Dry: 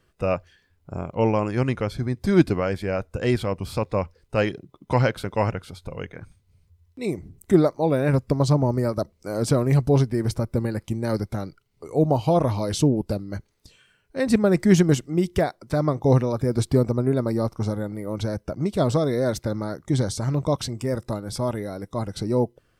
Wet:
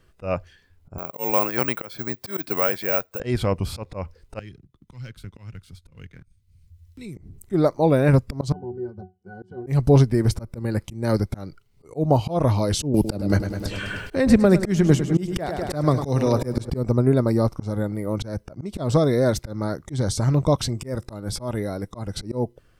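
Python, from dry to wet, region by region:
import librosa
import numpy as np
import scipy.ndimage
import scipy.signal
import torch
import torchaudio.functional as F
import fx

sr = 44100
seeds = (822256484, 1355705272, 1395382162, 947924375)

y = fx.chain(x, sr, fx.weighting(curve='A'),
    fx.resample_bad(factor=2, down='none', up='zero_stuff'), at=(0.98, 3.2))
y = fx.chain(y, sr, fx.leveller(passes=1),
    fx.tone_stack(knobs='6-0-2'),
    fx.band_squash(depth_pct=70), at=(4.39, 7.17))
y = fx.chain(y, sr, fx.highpass(hz=120.0, slope=12),
    fx.octave_resonator(note='F#', decay_s=0.21), at=(8.52, 9.67))
y = fx.chain(y, sr, fx.echo_feedback(ms=102, feedback_pct=56, wet_db=-13.0),
    fx.band_squash(depth_pct=100), at=(12.94, 16.7))
y = fx.low_shelf(y, sr, hz=62.0, db=9.5)
y = fx.auto_swell(y, sr, attack_ms=193.0)
y = y * 10.0 ** (3.0 / 20.0)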